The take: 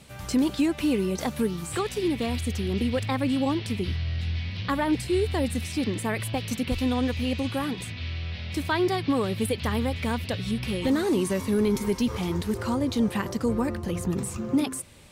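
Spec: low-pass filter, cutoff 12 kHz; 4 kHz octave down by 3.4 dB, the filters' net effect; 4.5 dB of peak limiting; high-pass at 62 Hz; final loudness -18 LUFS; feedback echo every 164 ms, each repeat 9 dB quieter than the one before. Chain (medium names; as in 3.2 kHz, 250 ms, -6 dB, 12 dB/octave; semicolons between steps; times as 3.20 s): high-pass 62 Hz; low-pass 12 kHz; peaking EQ 4 kHz -4.5 dB; peak limiter -18.5 dBFS; feedback delay 164 ms, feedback 35%, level -9 dB; trim +10.5 dB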